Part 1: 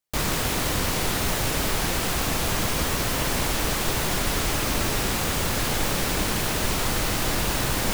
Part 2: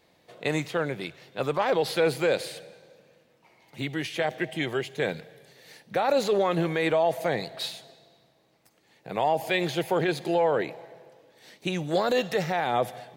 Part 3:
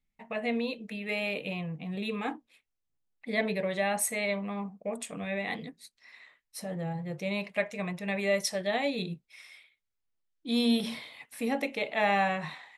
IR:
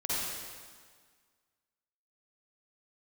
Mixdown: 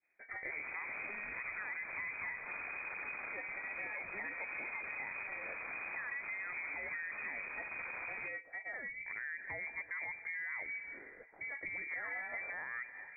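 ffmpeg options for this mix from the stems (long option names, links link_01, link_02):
-filter_complex "[0:a]aeval=exprs='clip(val(0),-1,0.0266)':channel_layout=same,adelay=350,volume=-4.5dB[link_01];[1:a]agate=range=-33dB:threshold=-53dB:ratio=3:detection=peak,volume=-3dB[link_02];[2:a]bandreject=frequency=60:width_type=h:width=6,bandreject=frequency=120:width_type=h:width=6,bandreject=frequency=180:width_type=h:width=6,bandreject=frequency=240:width_type=h:width=6,bandreject=frequency=300:width_type=h:width=6,bandreject=frequency=360:width_type=h:width=6,bandreject=frequency=420:width_type=h:width=6,bandreject=frequency=480:width_type=h:width=6,bandreject=frequency=540:width_type=h:width=6,bandreject=frequency=600:width_type=h:width=6,asoftclip=type=tanh:threshold=-20.5dB,volume=-5.5dB,asplit=2[link_03][link_04];[link_04]apad=whole_len=365151[link_05];[link_01][link_05]sidechaincompress=threshold=-40dB:ratio=3:attack=16:release=482[link_06];[link_06][link_02]amix=inputs=2:normalize=0,alimiter=limit=-22.5dB:level=0:latency=1:release=30,volume=0dB[link_07];[link_03][link_07]amix=inputs=2:normalize=0,lowpass=frequency=2100:width_type=q:width=0.5098,lowpass=frequency=2100:width_type=q:width=0.6013,lowpass=frequency=2100:width_type=q:width=0.9,lowpass=frequency=2100:width_type=q:width=2.563,afreqshift=-2500,acompressor=threshold=-43dB:ratio=3"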